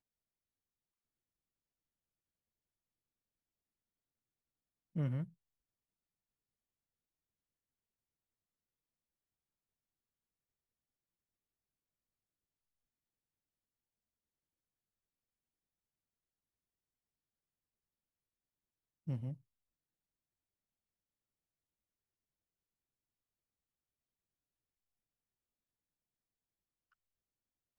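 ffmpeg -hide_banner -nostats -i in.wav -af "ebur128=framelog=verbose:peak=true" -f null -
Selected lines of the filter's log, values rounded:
Integrated loudness:
  I:         -41.4 LUFS
  Threshold: -51.7 LUFS
Loudness range:
  LRA:         4.7 LU
  Threshold: -68.4 LUFS
  LRA low:   -51.2 LUFS
  LRA high:  -46.5 LUFS
True peak:
  Peak:      -27.3 dBFS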